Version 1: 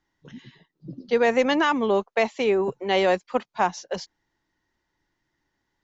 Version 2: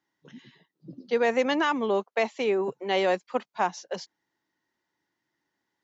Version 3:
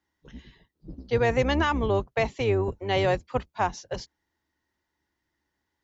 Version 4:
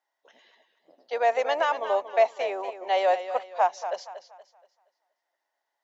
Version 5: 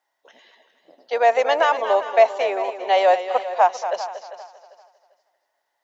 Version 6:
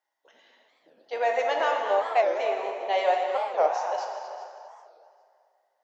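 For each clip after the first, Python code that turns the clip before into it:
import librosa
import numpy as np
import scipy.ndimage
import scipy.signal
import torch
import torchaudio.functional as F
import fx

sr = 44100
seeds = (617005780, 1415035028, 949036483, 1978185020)

y1 = scipy.signal.sosfilt(scipy.signal.butter(2, 170.0, 'highpass', fs=sr, output='sos'), x)
y1 = y1 * librosa.db_to_amplitude(-3.5)
y2 = fx.octave_divider(y1, sr, octaves=2, level_db=2.0)
y2 = fx.quant_float(y2, sr, bits=8)
y3 = fx.ladder_highpass(y2, sr, hz=590.0, resonance_pct=65)
y3 = fx.echo_warbled(y3, sr, ms=236, feedback_pct=34, rate_hz=2.8, cents=79, wet_db=-11)
y3 = y3 * librosa.db_to_amplitude(7.5)
y4 = fx.echo_feedback(y3, sr, ms=396, feedback_pct=26, wet_db=-14.5)
y4 = y4 * librosa.db_to_amplitude(6.5)
y5 = fx.rev_plate(y4, sr, seeds[0], rt60_s=2.3, hf_ratio=0.65, predelay_ms=0, drr_db=1.5)
y5 = fx.record_warp(y5, sr, rpm=45.0, depth_cents=250.0)
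y5 = y5 * librosa.db_to_amplitude(-8.5)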